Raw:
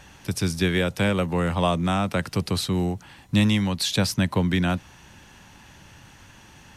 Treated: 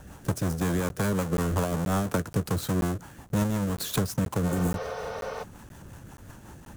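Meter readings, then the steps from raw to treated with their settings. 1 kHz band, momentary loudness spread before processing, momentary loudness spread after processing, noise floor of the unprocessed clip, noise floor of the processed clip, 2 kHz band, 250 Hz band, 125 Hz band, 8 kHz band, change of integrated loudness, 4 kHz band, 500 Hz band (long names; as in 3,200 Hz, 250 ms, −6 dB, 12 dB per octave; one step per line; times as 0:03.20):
−4.0 dB, 5 LU, 20 LU, −50 dBFS, −50 dBFS, −8.0 dB, −4.5 dB, −3.0 dB, −2.5 dB, −5.0 dB, −11.5 dB, −3.5 dB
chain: each half-wave held at its own peak
flat-topped bell 3,200 Hz −8.5 dB
downward compressor 5 to 1, threshold −23 dBFS, peak gain reduction 10.5 dB
rotating-speaker cabinet horn 5.5 Hz
healed spectral selection 0:04.51–0:05.40, 420–6,300 Hz before
regular buffer underruns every 0.48 s, samples 512, zero, from 0:00.89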